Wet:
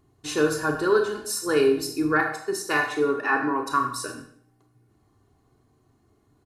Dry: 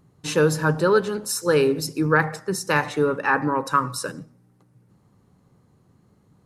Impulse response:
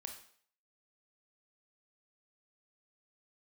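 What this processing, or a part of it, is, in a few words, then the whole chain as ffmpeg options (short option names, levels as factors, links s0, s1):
microphone above a desk: -filter_complex "[0:a]asplit=3[s0][s1][s2];[s0]afade=t=out:st=2.2:d=0.02[s3];[s1]highpass=150,afade=t=in:st=2.2:d=0.02,afade=t=out:st=3.66:d=0.02[s4];[s2]afade=t=in:st=3.66:d=0.02[s5];[s3][s4][s5]amix=inputs=3:normalize=0,aecho=1:1:2.8:0.74[s6];[1:a]atrim=start_sample=2205[s7];[s6][s7]afir=irnorm=-1:irlink=0"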